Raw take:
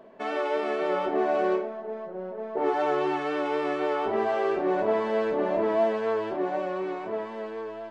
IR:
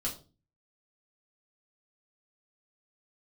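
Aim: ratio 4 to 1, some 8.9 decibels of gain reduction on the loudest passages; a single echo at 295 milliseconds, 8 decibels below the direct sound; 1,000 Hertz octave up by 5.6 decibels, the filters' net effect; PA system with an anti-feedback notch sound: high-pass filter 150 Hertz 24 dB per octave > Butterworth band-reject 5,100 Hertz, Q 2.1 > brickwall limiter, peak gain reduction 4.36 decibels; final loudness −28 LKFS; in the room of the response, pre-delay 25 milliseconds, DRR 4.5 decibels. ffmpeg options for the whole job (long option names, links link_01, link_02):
-filter_complex "[0:a]equalizer=frequency=1000:width_type=o:gain=7.5,acompressor=threshold=-28dB:ratio=4,aecho=1:1:295:0.398,asplit=2[link_01][link_02];[1:a]atrim=start_sample=2205,adelay=25[link_03];[link_02][link_03]afir=irnorm=-1:irlink=0,volume=-7dB[link_04];[link_01][link_04]amix=inputs=2:normalize=0,highpass=frequency=150:width=0.5412,highpass=frequency=150:width=1.3066,asuperstop=centerf=5100:order=8:qfactor=2.1,volume=3dB,alimiter=limit=-18.5dB:level=0:latency=1"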